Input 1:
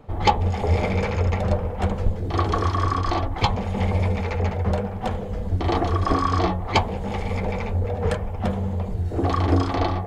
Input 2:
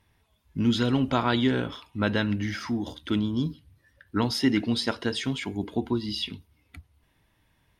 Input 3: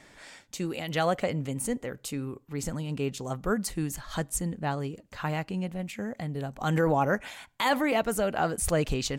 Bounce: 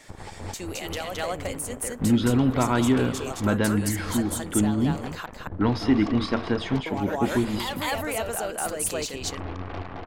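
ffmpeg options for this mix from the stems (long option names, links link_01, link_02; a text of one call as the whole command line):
ffmpeg -i stem1.wav -i stem2.wav -i stem3.wav -filter_complex "[0:a]lowpass=1600,alimiter=limit=-14dB:level=0:latency=1:release=206,aeval=exprs='0.2*(cos(1*acos(clip(val(0)/0.2,-1,1)))-cos(1*PI/2))+0.0355*(cos(4*acos(clip(val(0)/0.2,-1,1)))-cos(4*PI/2))+0.0447*(cos(7*acos(clip(val(0)/0.2,-1,1)))-cos(7*PI/2))':channel_layout=same,volume=-8.5dB,asplit=2[link_01][link_02];[link_02]volume=-12.5dB[link_03];[1:a]lowpass=frequency=1400:poles=1,adelay=1450,volume=0dB,asplit=2[link_04][link_05];[link_05]volume=-14dB[link_06];[2:a]highpass=320,highshelf=frequency=4200:gain=8.5,volume=1.5dB,asplit=3[link_07][link_08][link_09];[link_07]atrim=end=5.26,asetpts=PTS-STARTPTS,afade=type=out:start_time=5.256:duration=0.004:curve=hsin[link_10];[link_08]atrim=start=5.26:end=6.86,asetpts=PTS-STARTPTS,volume=0[link_11];[link_09]atrim=start=6.86,asetpts=PTS-STARTPTS,afade=type=in:duration=0.004:curve=hsin[link_12];[link_10][link_11][link_12]concat=n=3:v=0:a=1,asplit=3[link_13][link_14][link_15];[link_14]volume=-9.5dB[link_16];[link_15]apad=whole_len=443923[link_17];[link_01][link_17]sidechaincompress=threshold=-43dB:ratio=8:attack=16:release=239[link_18];[link_18][link_13]amix=inputs=2:normalize=0,asoftclip=type=tanh:threshold=-18dB,acompressor=threshold=-36dB:ratio=5,volume=0dB[link_19];[link_03][link_06][link_16]amix=inputs=3:normalize=0,aecho=0:1:216:1[link_20];[link_04][link_19][link_20]amix=inputs=3:normalize=0,dynaudnorm=framelen=280:gausssize=3:maxgain=4dB,asoftclip=type=tanh:threshold=-10dB" out.wav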